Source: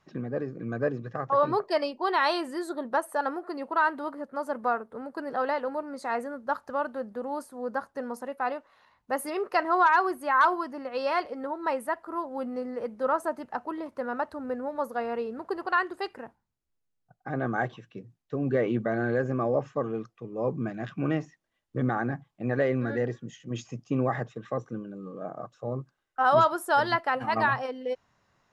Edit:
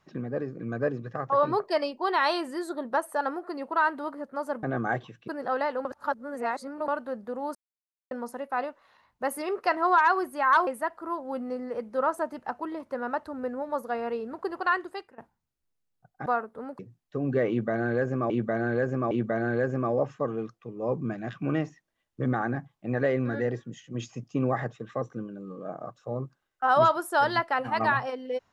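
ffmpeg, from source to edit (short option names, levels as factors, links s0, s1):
-filter_complex "[0:a]asplit=13[s0][s1][s2][s3][s4][s5][s6][s7][s8][s9][s10][s11][s12];[s0]atrim=end=4.632[s13];[s1]atrim=start=17.318:end=17.972[s14];[s2]atrim=start=5.158:end=5.732[s15];[s3]atrim=start=5.728:end=6.762,asetpts=PTS-STARTPTS,areverse[s16];[s4]atrim=start=6.758:end=7.43,asetpts=PTS-STARTPTS,afade=t=out:st=0.668:d=0.004:c=hsin[s17];[s5]atrim=start=7.43:end=7.99,asetpts=PTS-STARTPTS,volume=0[s18];[s6]atrim=start=7.99:end=10.552,asetpts=PTS-STARTPTS,afade=t=in:d=0.004:c=hsin[s19];[s7]atrim=start=11.728:end=16.24,asetpts=PTS-STARTPTS,afade=t=out:st=4.122:d=0.39:silence=0.1[s20];[s8]atrim=start=16.24:end=17.322,asetpts=PTS-STARTPTS,afade=t=in:d=0.004:c=hsin:silence=0.1[s21];[s9]atrim=start=4.628:end=5.162[s22];[s10]atrim=start=17.968:end=19.482[s23];[s11]atrim=start=18.668:end=19.482[s24];[s12]atrim=start=18.668[s25];[s13][s14]acrossfade=d=0.004:c1=hsin:c2=hsin[s26];[s26][s15]acrossfade=d=0.004:c1=hsin:c2=hsin[s27];[s27][s16]acrossfade=d=0.004:c1=hsin:c2=hsin[s28];[s17][s18][s19]concat=n=3:v=0:a=1[s29];[s28][s29]acrossfade=d=0.004:c1=hsin:c2=hsin[s30];[s20][s21]concat=n=2:v=0:a=1[s31];[s30][s31]acrossfade=d=0.004:c1=hsin:c2=hsin[s32];[s32][s22]acrossfade=d=0.004:c1=hsin:c2=hsin[s33];[s33][s23]acrossfade=d=0.004:c1=hsin:c2=hsin[s34];[s34][s24]acrossfade=d=0.004:c1=hsin:c2=hsin[s35];[s35][s25]acrossfade=d=0.004:c1=hsin:c2=hsin"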